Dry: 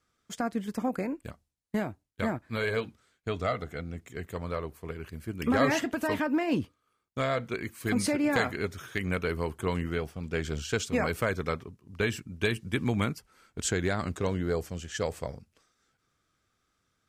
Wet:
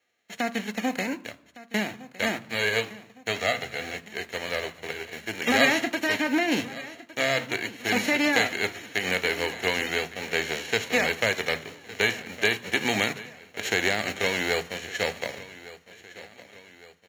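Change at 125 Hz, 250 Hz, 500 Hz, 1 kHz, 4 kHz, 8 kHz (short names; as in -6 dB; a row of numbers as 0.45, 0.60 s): -6.5, 0.0, +2.0, +3.0, +11.5, +4.5 dB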